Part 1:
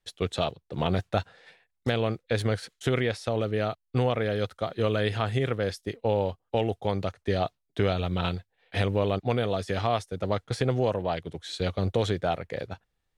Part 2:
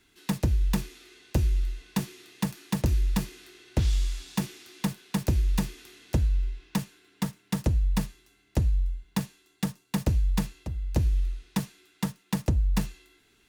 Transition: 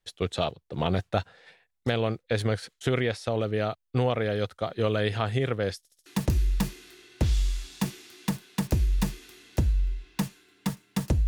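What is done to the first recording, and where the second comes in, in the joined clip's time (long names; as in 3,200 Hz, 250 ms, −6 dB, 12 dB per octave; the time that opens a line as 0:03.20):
part 1
0:05.78: stutter in place 0.07 s, 4 plays
0:06.06: continue with part 2 from 0:02.62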